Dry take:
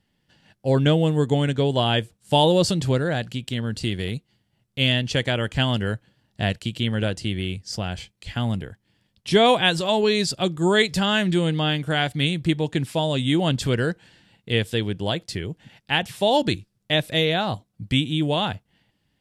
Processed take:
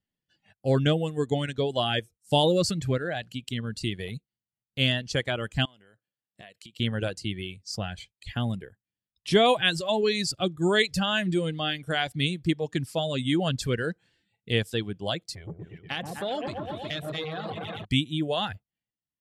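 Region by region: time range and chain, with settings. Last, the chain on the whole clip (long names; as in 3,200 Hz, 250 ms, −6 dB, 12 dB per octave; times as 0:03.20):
0:05.65–0:06.80: high-pass filter 410 Hz 6 dB per octave + downward compressor 5 to 1, threshold −40 dBFS
0:15.35–0:17.85: echo whose low-pass opens from repeat to repeat 120 ms, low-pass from 750 Hz, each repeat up 1 octave, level −3 dB + downward compressor 16 to 1, threshold −20 dBFS + saturating transformer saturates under 850 Hz
whole clip: noise reduction from a noise print of the clip's start 15 dB; notch filter 920 Hz, Q 9.7; reverb reduction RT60 1.9 s; level −3 dB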